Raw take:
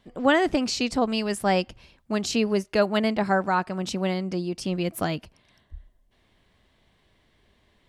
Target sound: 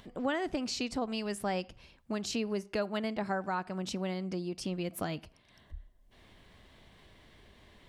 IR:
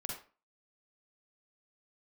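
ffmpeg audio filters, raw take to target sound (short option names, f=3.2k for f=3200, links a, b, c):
-filter_complex "[0:a]acompressor=mode=upward:threshold=-44dB:ratio=2.5,asplit=2[a][b];[1:a]atrim=start_sample=2205,lowpass=6.1k[c];[b][c]afir=irnorm=-1:irlink=0,volume=-21dB[d];[a][d]amix=inputs=2:normalize=0,acompressor=threshold=-31dB:ratio=2,volume=-4dB"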